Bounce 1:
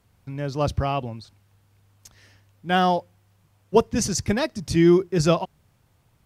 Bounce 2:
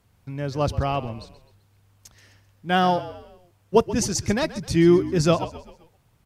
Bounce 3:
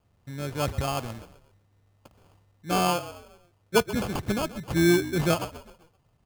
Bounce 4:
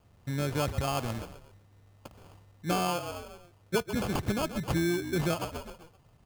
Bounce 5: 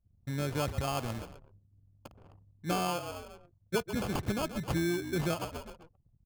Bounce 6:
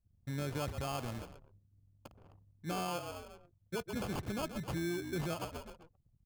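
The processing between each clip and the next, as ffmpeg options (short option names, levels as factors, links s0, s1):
-filter_complex "[0:a]asplit=5[s0][s1][s2][s3][s4];[s1]adelay=130,afreqshift=-43,volume=0.178[s5];[s2]adelay=260,afreqshift=-86,volume=0.0785[s6];[s3]adelay=390,afreqshift=-129,volume=0.0343[s7];[s4]adelay=520,afreqshift=-172,volume=0.0151[s8];[s0][s5][s6][s7][s8]amix=inputs=5:normalize=0"
-af "acrusher=samples=23:mix=1:aa=0.000001,volume=0.596"
-af "acompressor=threshold=0.0251:ratio=6,volume=1.88"
-af "anlmdn=0.001,volume=0.75"
-af "alimiter=level_in=1.33:limit=0.0631:level=0:latency=1:release=29,volume=0.75,volume=0.668"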